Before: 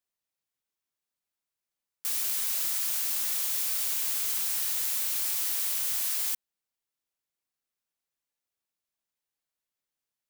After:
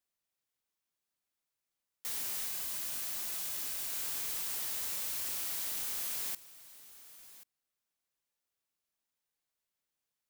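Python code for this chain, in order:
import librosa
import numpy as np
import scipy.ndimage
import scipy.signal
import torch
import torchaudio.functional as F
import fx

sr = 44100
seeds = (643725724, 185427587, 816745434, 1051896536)

p1 = 10.0 ** (-31.5 / 20.0) * np.tanh(x / 10.0 ** (-31.5 / 20.0))
p2 = fx.notch_comb(p1, sr, f0_hz=460.0, at=(2.47, 3.93))
p3 = np.clip(p2, -10.0 ** (-35.5 / 20.0), 10.0 ** (-35.5 / 20.0))
y = p3 + fx.echo_single(p3, sr, ms=1084, db=-17.5, dry=0)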